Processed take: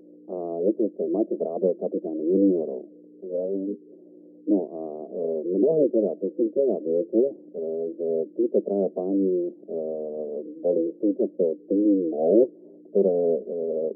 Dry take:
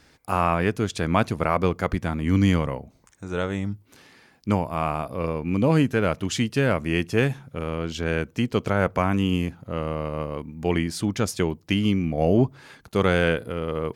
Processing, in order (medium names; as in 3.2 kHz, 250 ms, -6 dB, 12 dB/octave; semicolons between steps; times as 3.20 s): hum 60 Hz, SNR 16 dB; Chebyshev band-pass 200–500 Hz, order 4; formant shift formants +5 st; trim +4 dB